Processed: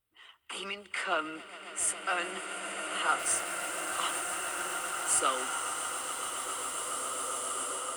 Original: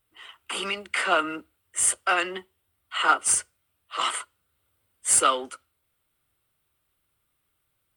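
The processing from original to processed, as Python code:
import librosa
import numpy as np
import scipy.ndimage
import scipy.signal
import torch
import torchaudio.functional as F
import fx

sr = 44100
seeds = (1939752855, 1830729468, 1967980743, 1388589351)

y = fx.echo_swell(x, sr, ms=138, loudest=8, wet_db=-17.5)
y = fx.sample_gate(y, sr, floor_db=-31.0, at=(3.19, 5.2))
y = fx.rev_bloom(y, sr, seeds[0], attack_ms=2450, drr_db=1.0)
y = y * librosa.db_to_amplitude(-8.5)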